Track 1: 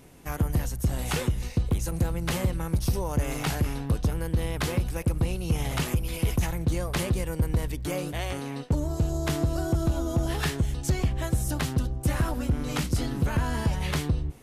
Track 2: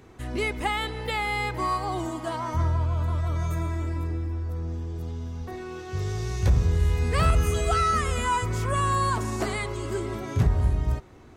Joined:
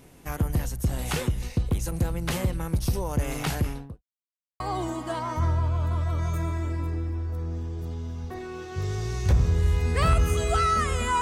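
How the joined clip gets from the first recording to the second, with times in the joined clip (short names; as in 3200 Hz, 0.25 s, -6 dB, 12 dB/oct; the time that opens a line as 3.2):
track 1
3.6–4.03 studio fade out
4.03–4.6 mute
4.6 switch to track 2 from 1.77 s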